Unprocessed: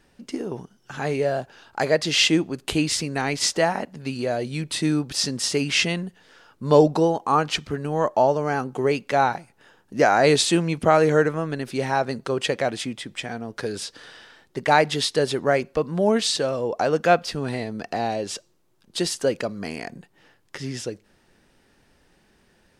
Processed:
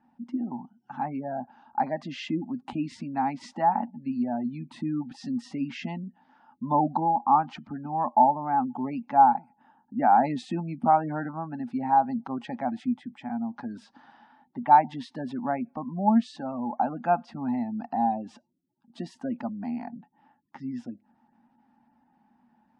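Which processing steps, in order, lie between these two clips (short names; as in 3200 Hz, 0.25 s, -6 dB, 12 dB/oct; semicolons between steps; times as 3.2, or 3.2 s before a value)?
spectral gate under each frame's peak -25 dB strong; double band-pass 450 Hz, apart 1.8 oct; gain +6.5 dB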